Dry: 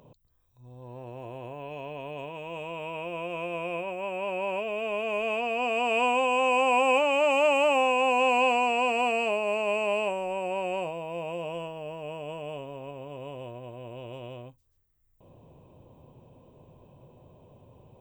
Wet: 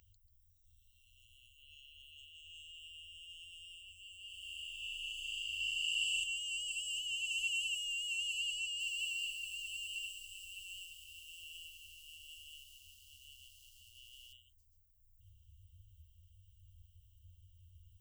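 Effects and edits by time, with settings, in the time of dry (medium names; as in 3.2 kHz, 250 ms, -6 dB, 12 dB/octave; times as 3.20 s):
4.26–6.24 s: flutter echo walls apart 6.4 m, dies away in 1.4 s
8.60–14.33 s: bit-crushed delay 197 ms, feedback 55%, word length 8-bit, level -11 dB
whole clip: FFT band-reject 100–2700 Hz; peaking EQ 3.7 kHz -11.5 dB 0.36 oct; trim +1.5 dB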